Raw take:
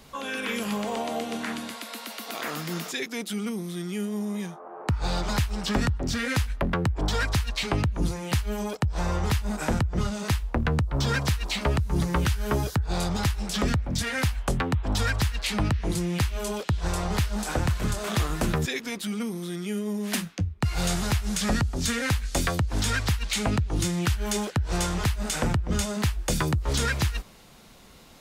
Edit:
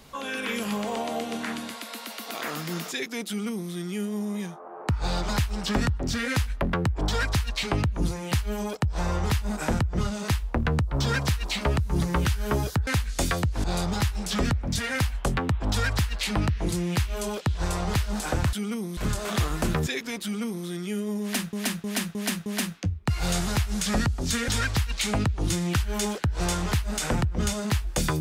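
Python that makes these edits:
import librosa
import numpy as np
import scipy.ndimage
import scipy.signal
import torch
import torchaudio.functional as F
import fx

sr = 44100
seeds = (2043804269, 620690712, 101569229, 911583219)

y = fx.edit(x, sr, fx.duplicate(start_s=3.28, length_s=0.44, to_s=17.76),
    fx.repeat(start_s=20.01, length_s=0.31, count=5),
    fx.move(start_s=22.03, length_s=0.77, to_s=12.87), tone=tone)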